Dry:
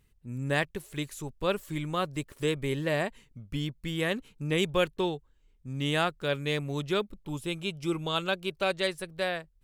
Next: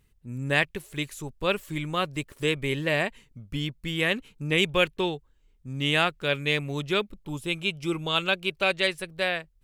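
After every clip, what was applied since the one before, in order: dynamic EQ 2500 Hz, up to +8 dB, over -46 dBFS, Q 1.4; gain +1.5 dB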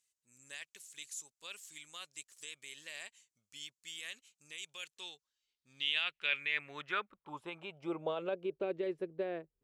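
limiter -18 dBFS, peak gain reduction 11 dB; band-pass sweep 6900 Hz -> 370 Hz, 4.99–8.66; gain +2 dB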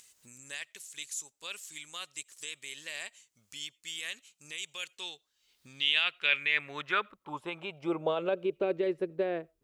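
upward compressor, threshold -52 dBFS; reverb RT60 0.20 s, pre-delay 50 ms, DRR 30 dB; gain +6.5 dB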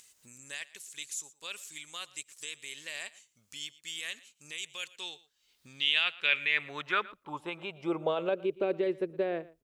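echo 0.116 s -20.5 dB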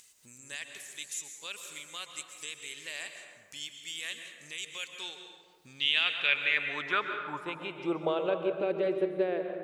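plate-style reverb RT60 1.7 s, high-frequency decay 0.45×, pre-delay 0.115 s, DRR 5.5 dB

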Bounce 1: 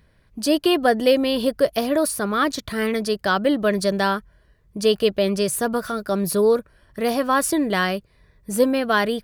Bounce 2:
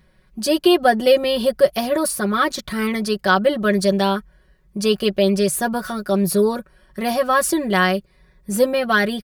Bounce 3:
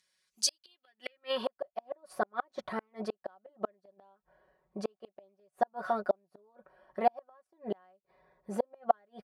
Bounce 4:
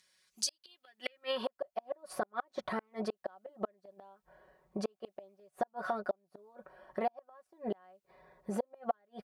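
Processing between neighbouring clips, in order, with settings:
comb 5.4 ms, depth 81%
flipped gate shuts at -11 dBFS, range -41 dB; band-pass sweep 6700 Hz -> 740 Hz, 0.39–1.66; gain +3 dB
compressor 3:1, threshold -40 dBFS, peak gain reduction 16 dB; gain +5.5 dB

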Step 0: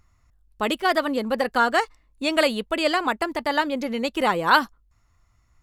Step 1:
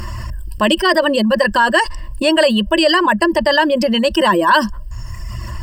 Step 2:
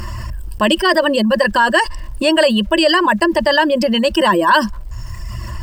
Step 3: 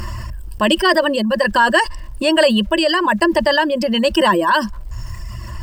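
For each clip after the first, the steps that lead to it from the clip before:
reverb removal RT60 0.72 s; ripple EQ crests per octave 1.3, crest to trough 17 dB; fast leveller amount 70%; gain -1 dB
sample gate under -41.5 dBFS
tremolo 1.2 Hz, depth 33%

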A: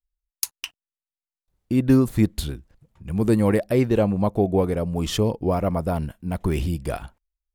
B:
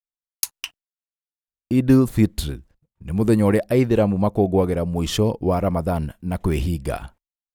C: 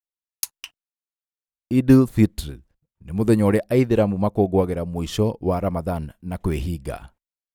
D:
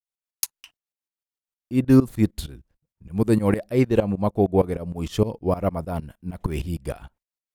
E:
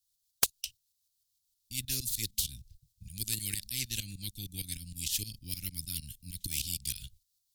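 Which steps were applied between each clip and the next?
expander -43 dBFS; gain +2 dB
upward expander 1.5:1, over -27 dBFS; gain +2 dB
tremolo saw up 6.5 Hz, depth 90%; gain +2 dB
elliptic band-stop 110–4000 Hz, stop band 60 dB; sine folder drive 5 dB, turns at -4.5 dBFS; spectral compressor 4:1; gain -3.5 dB

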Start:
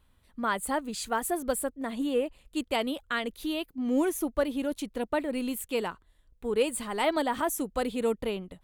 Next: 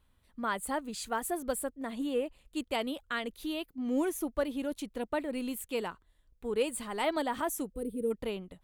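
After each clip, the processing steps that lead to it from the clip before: spectral gain 7.74–8.11, 510–8100 Hz -21 dB; gain -4 dB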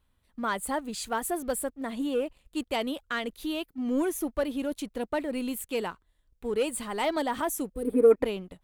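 sample leveller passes 1; spectral gain 7.88–8.25, 250–2600 Hz +11 dB

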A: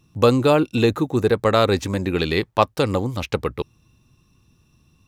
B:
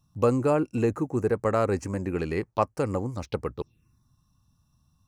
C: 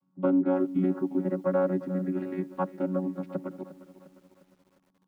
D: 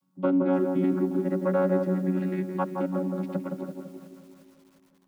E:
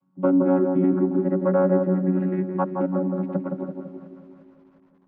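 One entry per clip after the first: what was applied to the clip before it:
envelope phaser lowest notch 380 Hz, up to 3600 Hz, full sweep at -21 dBFS; gain -6.5 dB
chord vocoder bare fifth, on F#3; air absorption 290 m; lo-fi delay 0.353 s, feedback 55%, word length 9-bit, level -15 dB
high shelf 2100 Hz +9.5 dB; darkening echo 0.167 s, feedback 58%, low-pass 920 Hz, level -3 dB
LPF 1400 Hz 12 dB/oct; gain +4.5 dB

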